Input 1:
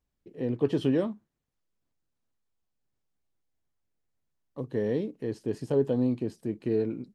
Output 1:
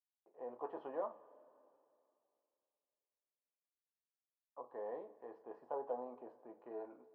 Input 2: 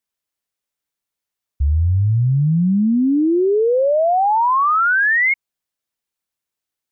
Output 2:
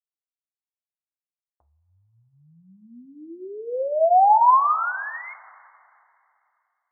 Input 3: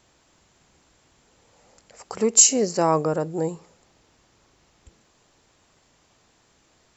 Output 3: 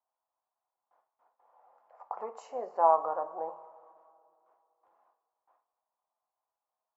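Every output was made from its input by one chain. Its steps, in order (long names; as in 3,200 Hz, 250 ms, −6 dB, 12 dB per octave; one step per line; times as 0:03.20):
noise gate with hold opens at −49 dBFS
flat-topped band-pass 870 Hz, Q 1.9
coupled-rooms reverb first 0.26 s, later 2.7 s, from −20 dB, DRR 6.5 dB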